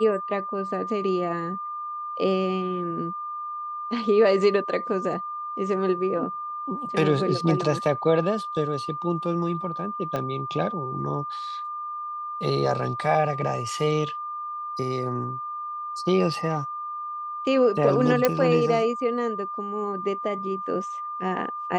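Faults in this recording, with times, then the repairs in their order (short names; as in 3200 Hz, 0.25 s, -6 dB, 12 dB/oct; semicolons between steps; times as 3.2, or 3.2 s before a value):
tone 1200 Hz -30 dBFS
10.16 pop -16 dBFS
18.25 pop -6 dBFS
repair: de-click; notch 1200 Hz, Q 30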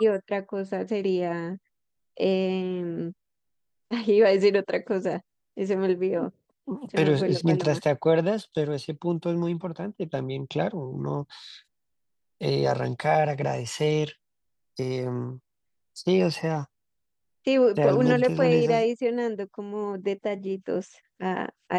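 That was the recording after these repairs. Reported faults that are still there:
10.16 pop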